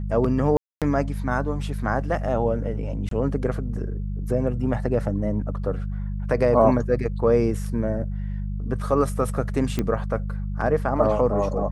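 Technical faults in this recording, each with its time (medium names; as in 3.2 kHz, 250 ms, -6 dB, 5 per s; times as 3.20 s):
hum 50 Hz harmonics 4 -28 dBFS
0.57–0.82 s: dropout 247 ms
3.09–3.11 s: dropout 23 ms
9.79 s: pop -11 dBFS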